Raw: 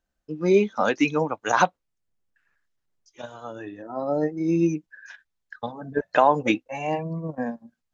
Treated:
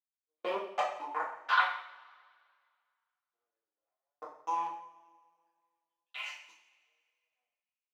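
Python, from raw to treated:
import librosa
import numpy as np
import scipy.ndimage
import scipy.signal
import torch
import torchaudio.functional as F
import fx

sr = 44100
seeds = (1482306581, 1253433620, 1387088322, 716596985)

p1 = fx.spec_delay(x, sr, highs='early', ms=292)
p2 = fx.high_shelf(p1, sr, hz=2000.0, db=-4.5)
p3 = fx.level_steps(p2, sr, step_db=22)
p4 = fx.backlash(p3, sr, play_db=-51.5)
p5 = fx.power_curve(p4, sr, exponent=3.0)
p6 = fx.filter_lfo_highpass(p5, sr, shape='saw_up', hz=0.3, low_hz=390.0, high_hz=4700.0, q=2.4)
p7 = p6 + fx.echo_single(p6, sr, ms=176, db=-22.0, dry=0)
p8 = fx.rev_double_slope(p7, sr, seeds[0], early_s=0.54, late_s=2.0, knee_db=-20, drr_db=-7.0)
y = p8 * librosa.db_to_amplitude(-4.5)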